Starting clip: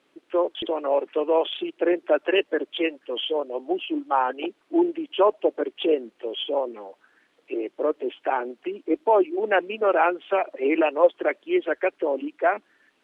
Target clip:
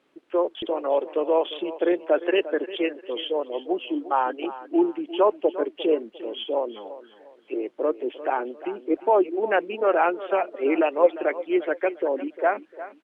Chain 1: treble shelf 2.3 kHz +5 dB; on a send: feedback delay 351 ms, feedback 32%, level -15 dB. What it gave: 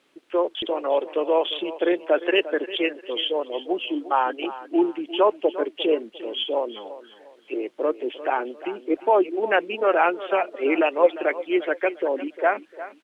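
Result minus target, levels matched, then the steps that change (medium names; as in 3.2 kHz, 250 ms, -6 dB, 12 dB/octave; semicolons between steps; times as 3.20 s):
4 kHz band +6.0 dB
change: treble shelf 2.3 kHz -5.5 dB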